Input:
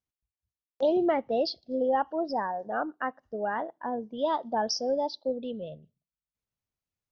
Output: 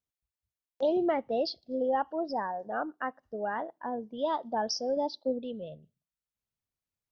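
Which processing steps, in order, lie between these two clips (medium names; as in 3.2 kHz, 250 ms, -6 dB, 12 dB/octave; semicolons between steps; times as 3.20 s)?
4.96–5.39 s: dynamic bell 250 Hz, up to +5 dB, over -44 dBFS, Q 0.97; trim -2.5 dB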